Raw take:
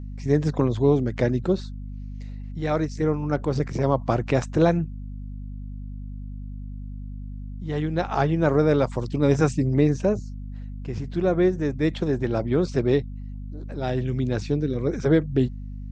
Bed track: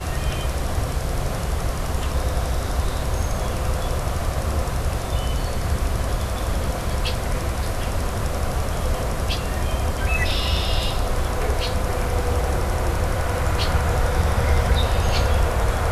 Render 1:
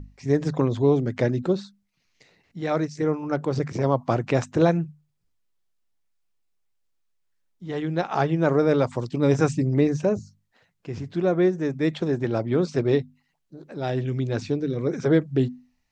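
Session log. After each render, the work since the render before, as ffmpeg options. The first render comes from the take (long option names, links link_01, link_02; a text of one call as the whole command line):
ffmpeg -i in.wav -af "bandreject=frequency=50:width_type=h:width=6,bandreject=frequency=100:width_type=h:width=6,bandreject=frequency=150:width_type=h:width=6,bandreject=frequency=200:width_type=h:width=6,bandreject=frequency=250:width_type=h:width=6" out.wav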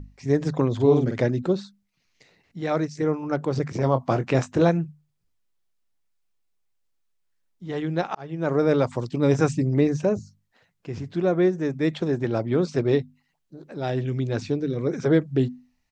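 ffmpeg -i in.wav -filter_complex "[0:a]asplit=3[link_01][link_02][link_03];[link_01]afade=type=out:start_time=0.79:duration=0.02[link_04];[link_02]asplit=2[link_05][link_06];[link_06]adelay=47,volume=-3.5dB[link_07];[link_05][link_07]amix=inputs=2:normalize=0,afade=type=in:start_time=0.79:duration=0.02,afade=type=out:start_time=1.19:duration=0.02[link_08];[link_03]afade=type=in:start_time=1.19:duration=0.02[link_09];[link_04][link_08][link_09]amix=inputs=3:normalize=0,asettb=1/sr,asplit=3[link_10][link_11][link_12];[link_10]atrim=end=3.804[link_13];[link_11]atrim=start=3.8:end=4.69,asetpts=PTS-STARTPTS,afade=type=in:duration=0.004:curve=qsin,afade=type=out:start_time=0.886:duration=0.004:curve=qsin,asplit=2[link_14][link_15];[link_15]adelay=23,volume=-9.5dB[link_16];[link_14][link_16]amix=inputs=2:normalize=0,atrim=end_sample=39249[link_17];[link_12]atrim=start=4.686[link_18];[link_13][link_17]acrossfade=duration=0.004:curve1=hsin:curve2=qsin[link_19];[link_19][link_18]acrossfade=duration=0.004:curve1=qsin:curve2=hsin,asplit=2[link_20][link_21];[link_20]atrim=end=8.15,asetpts=PTS-STARTPTS,afade=type=out:start_time=8.146:duration=0.004:curve=hsin[link_22];[link_21]atrim=start=8.15,asetpts=PTS-STARTPTS,afade=type=in:duration=0.5[link_23];[link_22][link_23]concat=n=2:v=0:a=1" out.wav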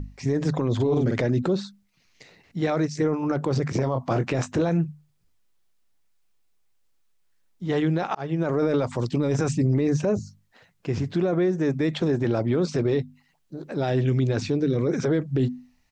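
ffmpeg -i in.wav -filter_complex "[0:a]asplit=2[link_01][link_02];[link_02]acompressor=threshold=-26dB:ratio=6,volume=1dB[link_03];[link_01][link_03]amix=inputs=2:normalize=0,alimiter=limit=-15dB:level=0:latency=1:release=12" out.wav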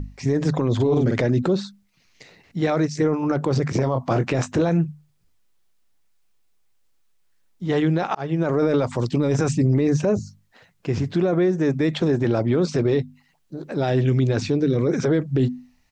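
ffmpeg -i in.wav -af "volume=3dB" out.wav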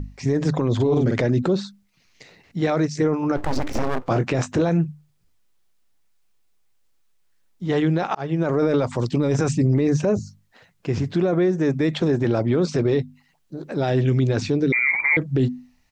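ffmpeg -i in.wav -filter_complex "[0:a]asplit=3[link_01][link_02][link_03];[link_01]afade=type=out:start_time=3.36:duration=0.02[link_04];[link_02]aeval=exprs='abs(val(0))':channel_layout=same,afade=type=in:start_time=3.36:duration=0.02,afade=type=out:start_time=4.07:duration=0.02[link_05];[link_03]afade=type=in:start_time=4.07:duration=0.02[link_06];[link_04][link_05][link_06]amix=inputs=3:normalize=0,asettb=1/sr,asplit=3[link_07][link_08][link_09];[link_07]atrim=end=14.724[link_10];[link_08]atrim=start=14.72:end=15.17,asetpts=PTS-STARTPTS,afade=type=in:duration=0.004:curve=qsin,afade=type=out:start_time=0.446:duration=0.004:curve=qsin,lowpass=frequency=2100:width_type=q:width=0.5098,lowpass=frequency=2100:width_type=q:width=0.6013,lowpass=frequency=2100:width_type=q:width=0.9,lowpass=frequency=2100:width_type=q:width=2.563,afreqshift=-2500[link_11];[link_09]atrim=start=15.166[link_12];[link_10][link_11]acrossfade=duration=0.004:curve1=hsin:curve2=qsin[link_13];[link_13][link_12]acrossfade=duration=0.004:curve1=qsin:curve2=hsin" out.wav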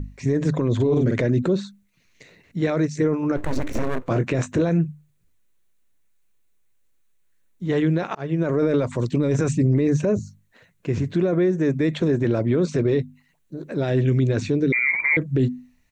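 ffmpeg -i in.wav -af "equalizer=frequency=800:width_type=o:width=0.33:gain=-10,equalizer=frequency=1250:width_type=o:width=0.33:gain=-4,equalizer=frequency=3150:width_type=o:width=0.33:gain=-4,equalizer=frequency=5000:width_type=o:width=0.33:gain=-10" out.wav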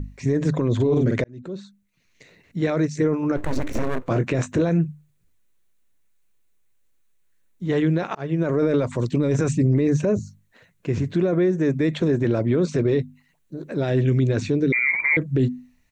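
ffmpeg -i in.wav -filter_complex "[0:a]asplit=2[link_01][link_02];[link_01]atrim=end=1.24,asetpts=PTS-STARTPTS,afade=type=out:start_time=1.236:duration=0.004:curve=hsin[link_03];[link_02]atrim=start=1.24,asetpts=PTS-STARTPTS,afade=type=in:duration=1.69:curve=qsin[link_04];[link_03][link_04]concat=n=2:v=0:a=1" out.wav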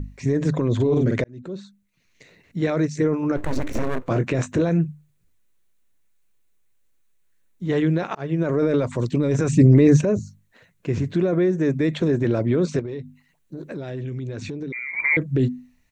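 ffmpeg -i in.wav -filter_complex "[0:a]asettb=1/sr,asplit=3[link_01][link_02][link_03];[link_01]atrim=end=12.794[link_04];[link_02]atrim=start=12.79:end=14.97,asetpts=PTS-STARTPTS,afade=type=in:duration=0.004:curve=qsin,afade=type=out:start_time=2.176:duration=0.004:curve=qsin,acompressor=threshold=-28dB:ratio=6:attack=3.2:release=140:knee=1:detection=peak[link_05];[link_03]atrim=start=14.966[link_06];[link_04][link_05]acrossfade=duration=0.004:curve1=hsin:curve2=qsin[link_07];[link_07][link_06]acrossfade=duration=0.004:curve1=qsin:curve2=hsin,asplit=3[link_08][link_09][link_10];[link_08]atrim=end=9.532[link_11];[link_09]atrim=start=9.528:end=10.012,asetpts=PTS-STARTPTS,volume=6dB[link_12];[link_10]atrim=start=10.008[link_13];[link_11][link_12]acrossfade=duration=0.004:curve1=hsin:curve2=hsin[link_14];[link_14][link_13]acrossfade=duration=0.004:curve1=hsin:curve2=hsin" out.wav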